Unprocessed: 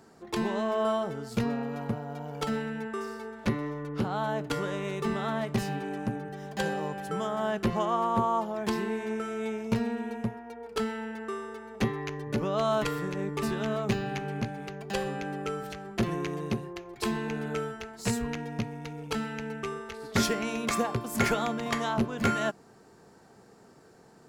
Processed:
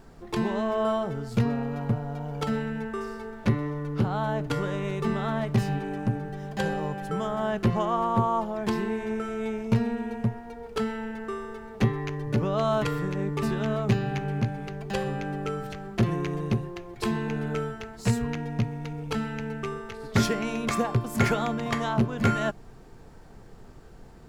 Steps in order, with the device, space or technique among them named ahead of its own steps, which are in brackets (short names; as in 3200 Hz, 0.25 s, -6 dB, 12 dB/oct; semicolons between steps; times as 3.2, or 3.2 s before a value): car interior (bell 120 Hz +8 dB 0.88 oct; high shelf 4300 Hz -5 dB; brown noise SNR 20 dB); gain +1.5 dB